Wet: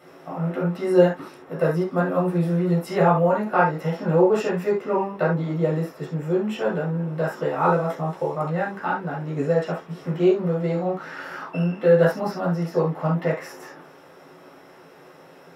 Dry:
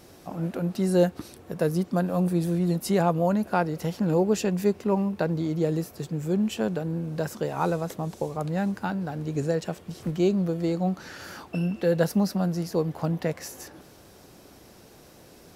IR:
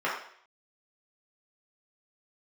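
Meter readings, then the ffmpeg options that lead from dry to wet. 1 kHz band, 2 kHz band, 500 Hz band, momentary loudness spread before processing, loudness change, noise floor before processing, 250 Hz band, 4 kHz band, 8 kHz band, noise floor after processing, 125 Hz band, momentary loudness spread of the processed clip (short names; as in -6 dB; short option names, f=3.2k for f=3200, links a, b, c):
+7.0 dB, +7.5 dB, +6.0 dB, 10 LU, +4.0 dB, -52 dBFS, +1.0 dB, -2.0 dB, n/a, -48 dBFS, +3.0 dB, 12 LU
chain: -filter_complex "[1:a]atrim=start_sample=2205,atrim=end_sample=3969[a];[0:a][a]afir=irnorm=-1:irlink=0,volume=-4.5dB"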